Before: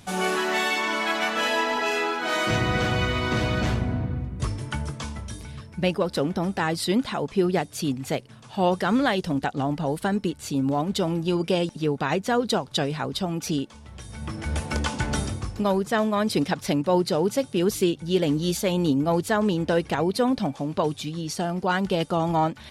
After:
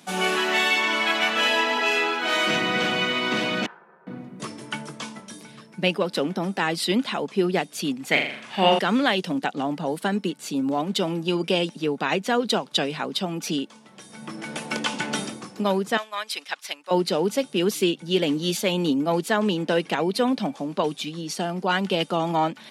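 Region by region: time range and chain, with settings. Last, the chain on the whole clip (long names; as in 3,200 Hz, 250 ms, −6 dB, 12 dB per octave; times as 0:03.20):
0:03.66–0:04.07: resonant band-pass 1,200 Hz, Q 7.5 + spectral tilt −2 dB per octave + ring modulation 280 Hz
0:08.11–0:08.79: parametric band 2,000 Hz +14 dB 0.94 octaves + flutter between parallel walls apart 7 metres, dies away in 0.58 s
0:15.97–0:16.91: high-pass filter 1,100 Hz + expander for the loud parts, over −43 dBFS
whole clip: Butterworth high-pass 170 Hz; dynamic equaliser 2,800 Hz, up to +7 dB, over −43 dBFS, Q 1.4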